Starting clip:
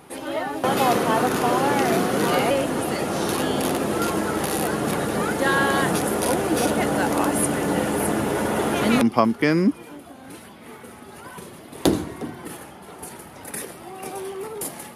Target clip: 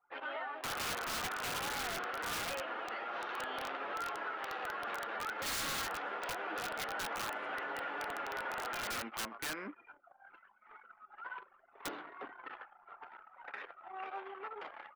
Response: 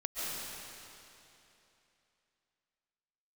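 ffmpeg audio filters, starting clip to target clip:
-filter_complex "[0:a]highpass=870,flanger=delay=6.8:depth=3.8:regen=60:speed=0.25:shape=triangular,lowpass=frequency=3000:width=0.5412,lowpass=frequency=3000:width=1.3066,asplit=2[link_01][link_02];[link_02]asplit=3[link_03][link_04][link_05];[link_03]adelay=133,afreqshift=31,volume=-22dB[link_06];[link_04]adelay=266,afreqshift=62,volume=-29.1dB[link_07];[link_05]adelay=399,afreqshift=93,volume=-36.3dB[link_08];[link_06][link_07][link_08]amix=inputs=3:normalize=0[link_09];[link_01][link_09]amix=inputs=2:normalize=0,aeval=exprs='(mod(17.8*val(0)+1,2)-1)/17.8':channel_layout=same,equalizer=frequency=1400:width=3.8:gain=5.5,anlmdn=0.0631,alimiter=level_in=8dB:limit=-24dB:level=0:latency=1:release=368,volume=-8dB,volume=1dB"

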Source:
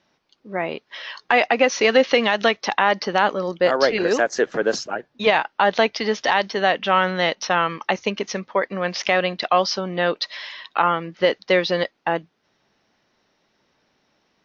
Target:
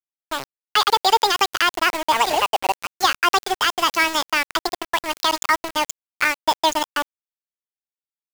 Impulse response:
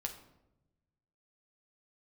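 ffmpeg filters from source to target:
-filter_complex "[0:a]lowshelf=frequency=80:gain=3.5,asetrate=76440,aresample=44100,acrossover=split=140|800|2100[link_01][link_02][link_03][link_04];[link_01]acontrast=22[link_05];[link_05][link_02][link_03][link_04]amix=inputs=4:normalize=0,aresample=16000,aresample=44100,aeval=exprs='val(0)*gte(abs(val(0)),0.0794)':channel_layout=same"

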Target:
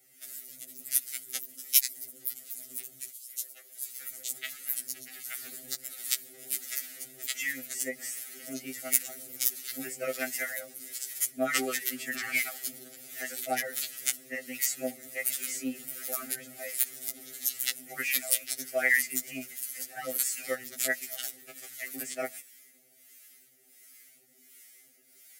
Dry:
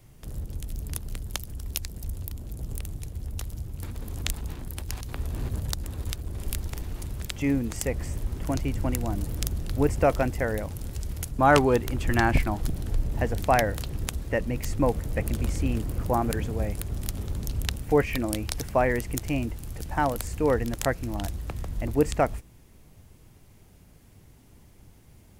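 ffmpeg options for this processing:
ffmpeg -i in.wav -filter_complex "[0:a]highpass=frequency=220:width=0.5412,highpass=frequency=220:width=1.3066,bandreject=frequency=60:width_type=h:width=6,bandreject=frequency=120:width_type=h:width=6,bandreject=frequency=180:width_type=h:width=6,bandreject=frequency=240:width_type=h:width=6,bandreject=frequency=300:width_type=h:width=6,asettb=1/sr,asplit=3[link_01][link_02][link_03];[link_01]atrim=end=3.114[link_04];[link_02]atrim=start=3.11:end=5.43,asetpts=PTS-STARTPTS,afade=type=in:duration=0.004:curve=qsin,afade=type=out:start_time=2.316:duration=0.004:curve=qsin,acrossover=split=380|3300[link_05][link_06][link_07];[link_06]adelay=180[link_08];[link_05]adelay=770[link_09];[link_09][link_08][link_07]amix=inputs=3:normalize=0,atrim=end_sample=102312[link_10];[link_03]atrim=start=5.426[link_11];[link_04][link_10]acrossfade=duration=0.004:curve1=hsin:curve2=qsin[link_12];[link_12][link_11]acrossfade=duration=0.004:curve1=qsin:curve2=hsin,flanger=delay=1.3:depth=3.5:regen=46:speed=1.7:shape=sinusoidal,crystalizer=i=9:c=0,asuperstop=centerf=960:order=12:qfactor=2.3,acrossover=split=840[link_13][link_14];[link_13]aeval=exprs='val(0)*(1-0.7/2+0.7/2*cos(2*PI*1.4*n/s))':channel_layout=same[link_15];[link_14]aeval=exprs='val(0)*(1-0.7/2-0.7/2*cos(2*PI*1.4*n/s))':channel_layout=same[link_16];[link_15][link_16]amix=inputs=2:normalize=0,equalizer=frequency=2000:width=4.2:gain=10,afftfilt=real='re*2.45*eq(mod(b,6),0)':imag='im*2.45*eq(mod(b,6),0)':win_size=2048:overlap=0.75,volume=-3dB" out.wav

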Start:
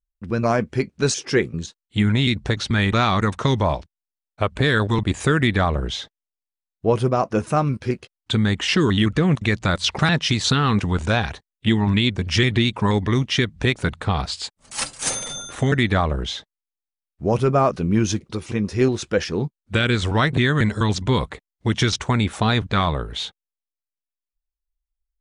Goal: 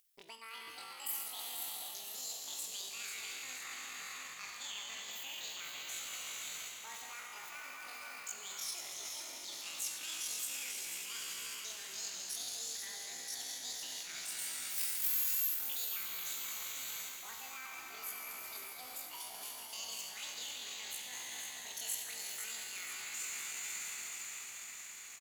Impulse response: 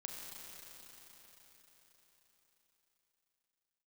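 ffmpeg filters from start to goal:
-filter_complex "[0:a]equalizer=frequency=1100:width_type=o:width=2.6:gain=6[link_01];[1:a]atrim=start_sample=2205[link_02];[link_01][link_02]afir=irnorm=-1:irlink=0,areverse,acompressor=threshold=-29dB:ratio=16,areverse,aderivative,bandreject=frequency=51.75:width_type=h:width=4,bandreject=frequency=103.5:width_type=h:width=4,bandreject=frequency=155.25:width_type=h:width=4,bandreject=frequency=207:width_type=h:width=4,bandreject=frequency=258.75:width_type=h:width=4,bandreject=frequency=310.5:width_type=h:width=4,acompressor=mode=upward:threshold=-48dB:ratio=2.5,asetrate=85689,aresample=44100,atempo=0.514651,asplit=2[link_03][link_04];[link_04]asplit=7[link_05][link_06][link_07][link_08][link_09][link_10][link_11];[link_05]adelay=491,afreqshift=-84,volume=-7dB[link_12];[link_06]adelay=982,afreqshift=-168,volume=-12.2dB[link_13];[link_07]adelay=1473,afreqshift=-252,volume=-17.4dB[link_14];[link_08]adelay=1964,afreqshift=-336,volume=-22.6dB[link_15];[link_09]adelay=2455,afreqshift=-420,volume=-27.8dB[link_16];[link_10]adelay=2946,afreqshift=-504,volume=-33dB[link_17];[link_11]adelay=3437,afreqshift=-588,volume=-38.2dB[link_18];[link_12][link_13][link_14][link_15][link_16][link_17][link_18]amix=inputs=7:normalize=0[link_19];[link_03][link_19]amix=inputs=2:normalize=0,volume=3dB"

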